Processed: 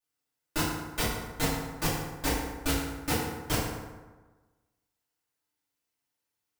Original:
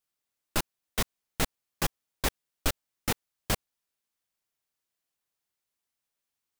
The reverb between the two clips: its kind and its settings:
feedback delay network reverb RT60 1.3 s, low-frequency decay 1×, high-frequency decay 0.55×, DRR −10 dB
level −8 dB

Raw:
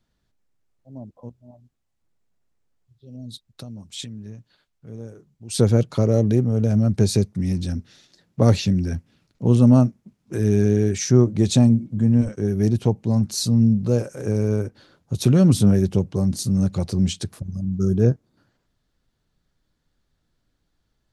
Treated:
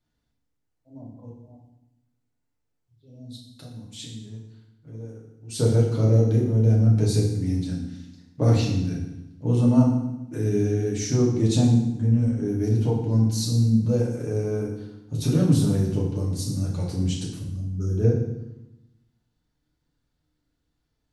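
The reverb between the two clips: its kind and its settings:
feedback delay network reverb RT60 0.89 s, low-frequency decay 1.4×, high-frequency decay 0.9×, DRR −4 dB
level −9.5 dB

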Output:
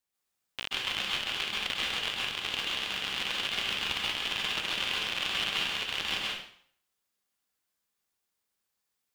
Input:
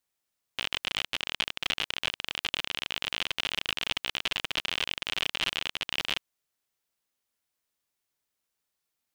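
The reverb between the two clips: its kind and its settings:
dense smooth reverb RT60 0.59 s, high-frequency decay 0.9×, pre-delay 120 ms, DRR −4 dB
level −4.5 dB

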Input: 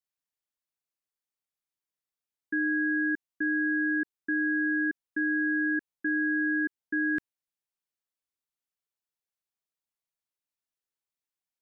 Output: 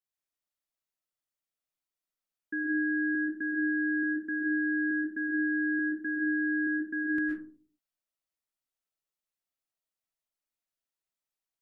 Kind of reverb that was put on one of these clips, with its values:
comb and all-pass reverb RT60 0.46 s, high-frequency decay 0.35×, pre-delay 85 ms, DRR −1.5 dB
level −4.5 dB

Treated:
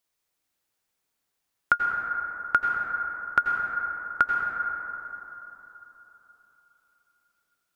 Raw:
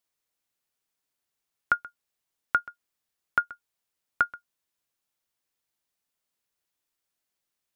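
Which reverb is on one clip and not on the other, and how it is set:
dense smooth reverb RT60 3.7 s, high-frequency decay 0.3×, pre-delay 75 ms, DRR 0.5 dB
level +2.5 dB

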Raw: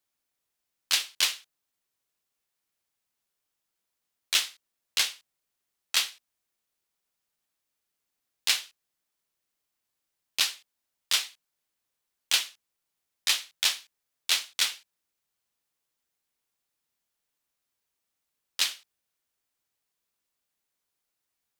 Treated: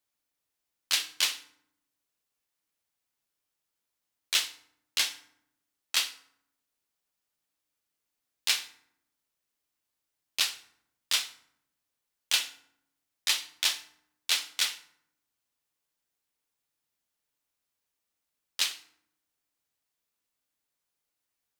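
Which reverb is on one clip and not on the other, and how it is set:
feedback delay network reverb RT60 0.72 s, low-frequency decay 1.55×, high-frequency decay 0.65×, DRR 10 dB
level −2 dB

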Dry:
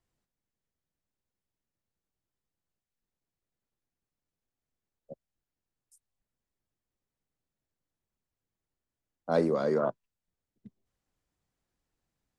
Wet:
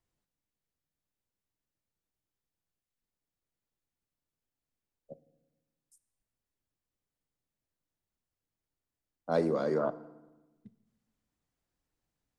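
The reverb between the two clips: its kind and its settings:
feedback delay network reverb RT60 1.1 s, low-frequency decay 1.35×, high-frequency decay 0.75×, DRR 14 dB
level −2.5 dB

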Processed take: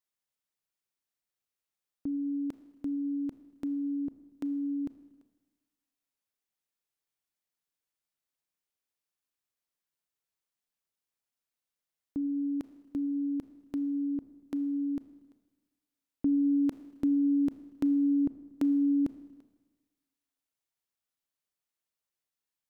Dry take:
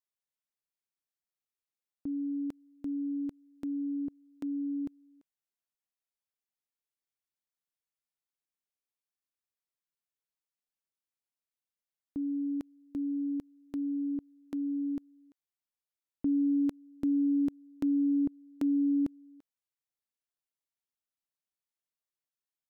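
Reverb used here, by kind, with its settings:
four-comb reverb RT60 1.3 s, combs from 26 ms, DRR 13 dB
level +2.5 dB

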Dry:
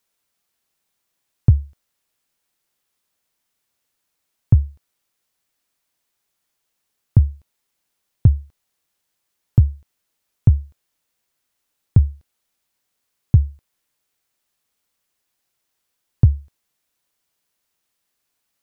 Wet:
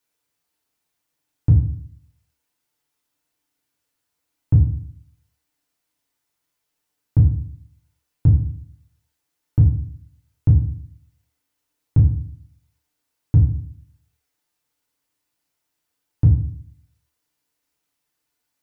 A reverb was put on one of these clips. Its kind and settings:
feedback delay network reverb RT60 0.53 s, low-frequency decay 1.35×, high-frequency decay 0.6×, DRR −2.5 dB
level −6 dB

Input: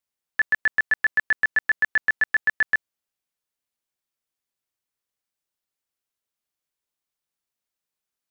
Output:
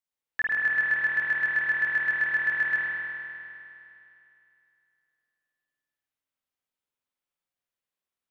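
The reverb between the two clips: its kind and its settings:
spring reverb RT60 2.8 s, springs 48 ms, chirp 75 ms, DRR −5 dB
level −7.5 dB

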